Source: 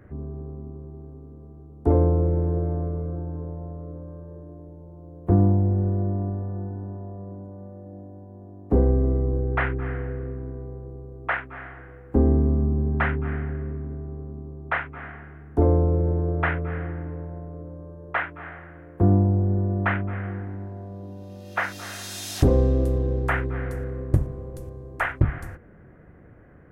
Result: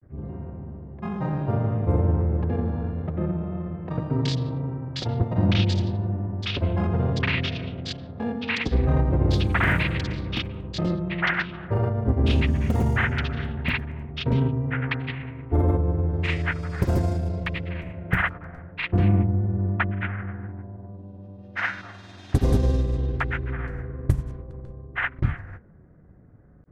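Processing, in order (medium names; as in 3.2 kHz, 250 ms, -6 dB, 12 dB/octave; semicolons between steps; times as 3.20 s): level-controlled noise filter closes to 660 Hz, open at -15 dBFS; FFT filter 170 Hz 0 dB, 480 Hz -6 dB, 3.7 kHz +10 dB; granulator, pitch spread up and down by 0 st; ever faster or slower copies 80 ms, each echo +5 st, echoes 3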